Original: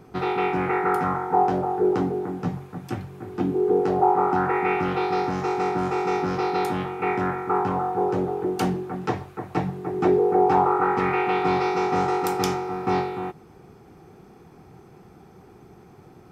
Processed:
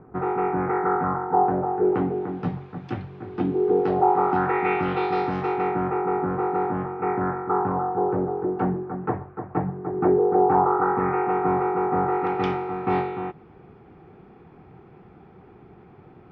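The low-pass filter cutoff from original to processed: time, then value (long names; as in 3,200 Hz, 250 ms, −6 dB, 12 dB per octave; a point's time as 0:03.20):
low-pass filter 24 dB per octave
0:01.46 1,600 Hz
0:02.42 4,000 Hz
0:05.35 4,000 Hz
0:06.06 1,600 Hz
0:12.02 1,600 Hz
0:12.45 3,100 Hz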